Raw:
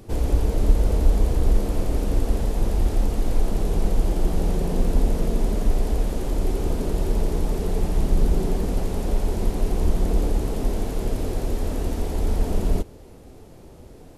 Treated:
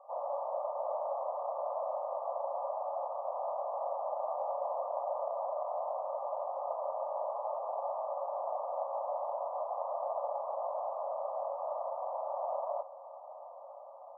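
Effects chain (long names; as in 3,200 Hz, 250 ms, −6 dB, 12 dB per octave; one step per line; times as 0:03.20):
Chebyshev band-pass filter 550–1,200 Hz, order 5
on a send: feedback delay with all-pass diffusion 834 ms, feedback 68%, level −16 dB
on the sum: level +3.5 dB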